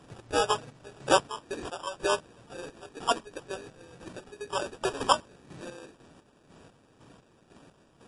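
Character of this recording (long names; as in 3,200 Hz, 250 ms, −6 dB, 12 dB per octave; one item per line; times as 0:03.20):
chopped level 2 Hz, depth 60%, duty 40%
aliases and images of a low sample rate 2,100 Hz, jitter 0%
MP3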